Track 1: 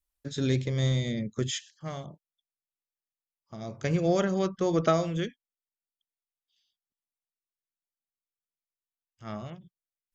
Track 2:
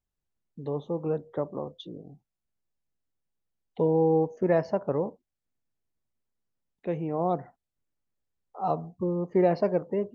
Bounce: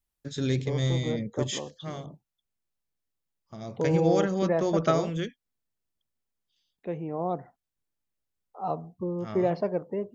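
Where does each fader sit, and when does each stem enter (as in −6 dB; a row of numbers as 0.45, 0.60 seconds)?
−0.5, −3.0 decibels; 0.00, 0.00 seconds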